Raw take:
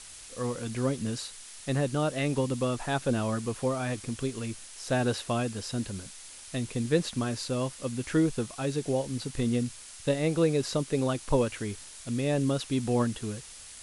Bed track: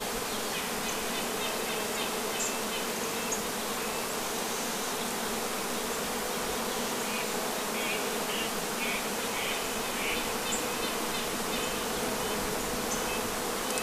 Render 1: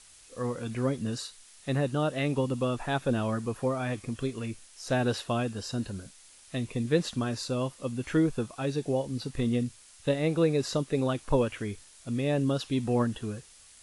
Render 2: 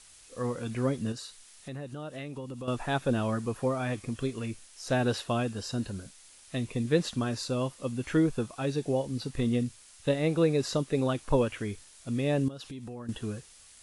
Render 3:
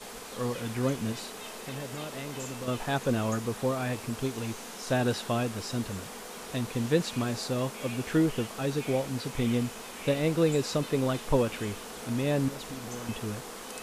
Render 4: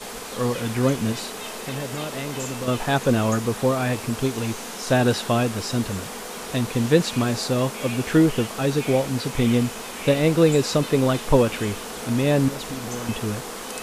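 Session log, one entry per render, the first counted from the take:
noise reduction from a noise print 8 dB
0:01.12–0:02.68: downward compressor 3 to 1, threshold −39 dBFS; 0:12.48–0:13.09: downward compressor 8 to 1, threshold −38 dBFS
mix in bed track −10 dB
level +8 dB

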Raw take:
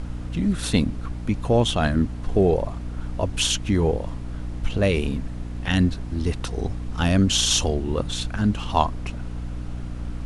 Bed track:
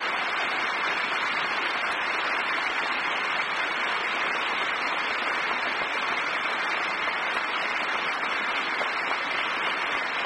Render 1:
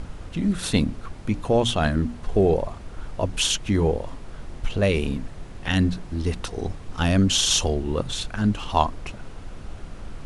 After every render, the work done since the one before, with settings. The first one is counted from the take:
mains-hum notches 60/120/180/240/300 Hz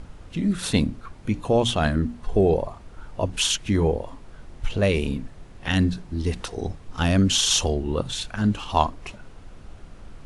noise reduction from a noise print 6 dB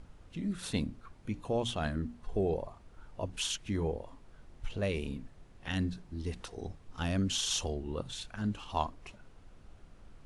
level −12 dB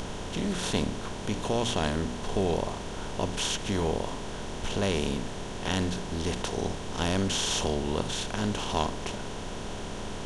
compressor on every frequency bin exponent 0.4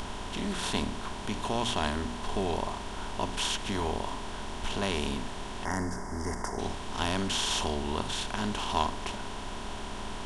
0:05.65–0:06.59: gain on a spectral selection 2,200–4,700 Hz −24 dB
thirty-one-band graphic EQ 100 Hz −7 dB, 160 Hz −12 dB, 315 Hz −4 dB, 500 Hz −11 dB, 1,000 Hz +4 dB, 6,300 Hz −5 dB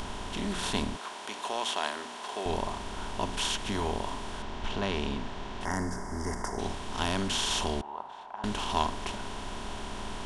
0:00.97–0:02.46: high-pass filter 490 Hz
0:04.42–0:05.61: high-frequency loss of the air 100 metres
0:07.81–0:08.44: resonant band-pass 850 Hz, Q 3.3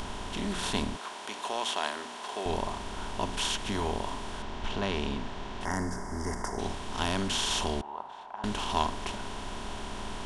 no processing that can be heard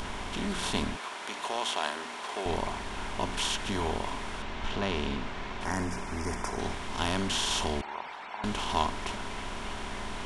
mix in bed track −17.5 dB

